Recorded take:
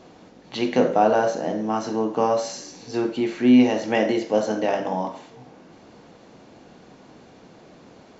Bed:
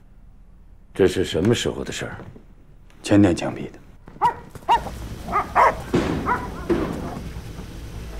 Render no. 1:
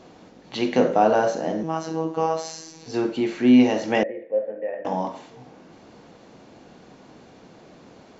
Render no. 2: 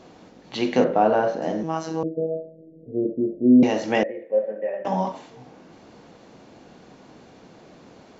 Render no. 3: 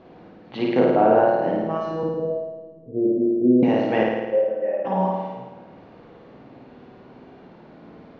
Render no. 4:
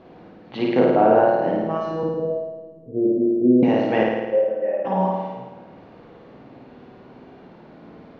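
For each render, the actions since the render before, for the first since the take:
1.63–2.86 s: robot voice 161 Hz; 4.03–4.85 s: cascade formant filter e
0.84–1.42 s: distance through air 220 m; 2.03–3.63 s: steep low-pass 640 Hz 96 dB/octave; 4.31–5.12 s: comb 5.2 ms, depth 76%
distance through air 350 m; flutter echo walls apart 9.3 m, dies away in 1.2 s
trim +1 dB

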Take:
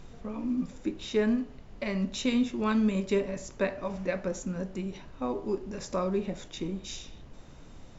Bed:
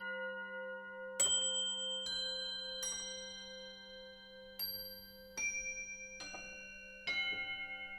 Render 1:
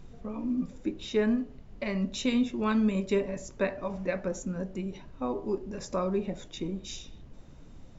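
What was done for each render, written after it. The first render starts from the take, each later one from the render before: noise reduction 6 dB, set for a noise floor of -49 dBFS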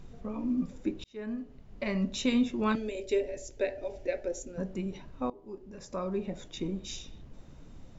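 1.04–1.87 s: fade in; 2.75–4.58 s: static phaser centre 460 Hz, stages 4; 5.30–6.65 s: fade in, from -21 dB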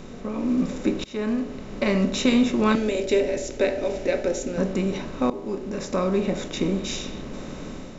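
spectral levelling over time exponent 0.6; level rider gain up to 6 dB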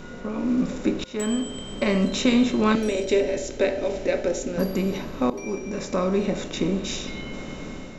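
add bed -4 dB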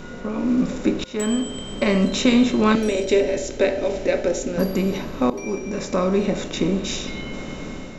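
trim +3 dB

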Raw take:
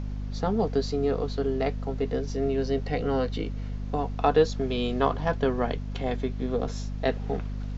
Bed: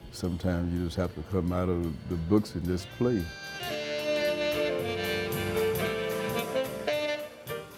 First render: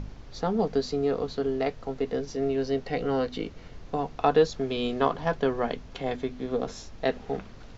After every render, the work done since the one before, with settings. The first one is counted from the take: de-hum 50 Hz, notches 5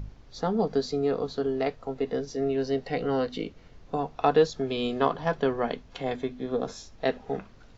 noise print and reduce 7 dB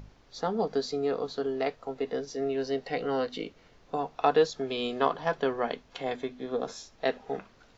bass shelf 210 Hz -12 dB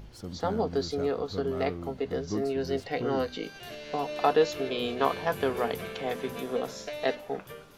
add bed -8.5 dB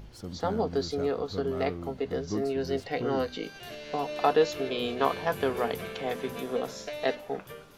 no audible change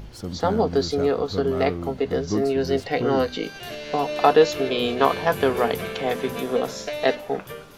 trim +7.5 dB; peak limiter -3 dBFS, peak gain reduction 1.5 dB

